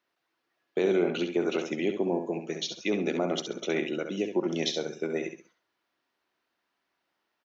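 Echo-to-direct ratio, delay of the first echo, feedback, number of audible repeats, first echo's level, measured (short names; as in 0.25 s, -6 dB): -6.5 dB, 67 ms, 26%, 3, -7.0 dB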